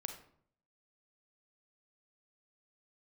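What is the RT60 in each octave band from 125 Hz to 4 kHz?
0.80, 0.70, 0.65, 0.60, 0.45, 0.40 seconds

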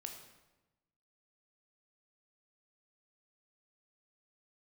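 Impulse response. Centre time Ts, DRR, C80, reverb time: 30 ms, 3.0 dB, 8.0 dB, 1.1 s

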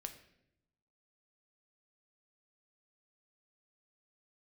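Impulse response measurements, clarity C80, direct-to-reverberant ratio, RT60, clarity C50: 13.5 dB, 6.0 dB, 0.80 s, 11.0 dB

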